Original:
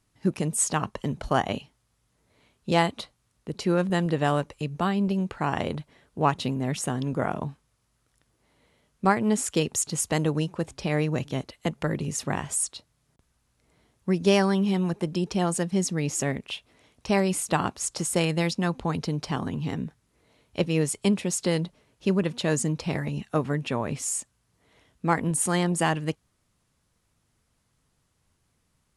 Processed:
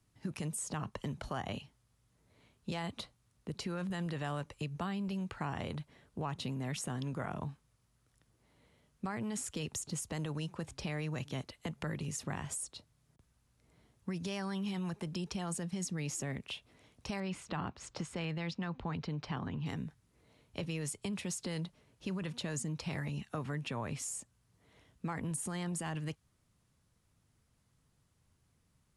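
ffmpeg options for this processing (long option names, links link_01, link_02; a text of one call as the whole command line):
ffmpeg -i in.wav -filter_complex "[0:a]asettb=1/sr,asplit=3[link_01][link_02][link_03];[link_01]atrim=end=17.204[link_04];[link_02]atrim=start=17.2:end=19.66,asetpts=PTS-STARTPTS,afade=type=in:duration=0.004:curve=qsin,afade=type=out:start_time=2.456:duration=0.004:curve=qsin,lowpass=3300[link_05];[link_03]atrim=start=19.656[link_06];[link_04][link_05]acrossfade=duration=0.004:curve1=hsin:curve2=qsin[link_07];[link_07][link_06]acrossfade=duration=0.004:curve1=qsin:curve2=hsin,equalizer=frequency=110:width_type=o:width=2.2:gain=5.5,alimiter=limit=-17dB:level=0:latency=1:release=20,acrossover=split=140|820[link_08][link_09][link_10];[link_08]acompressor=threshold=-40dB:ratio=4[link_11];[link_09]acompressor=threshold=-36dB:ratio=4[link_12];[link_10]acompressor=threshold=-34dB:ratio=4[link_13];[link_11][link_12][link_13]amix=inputs=3:normalize=0,volume=-5dB" out.wav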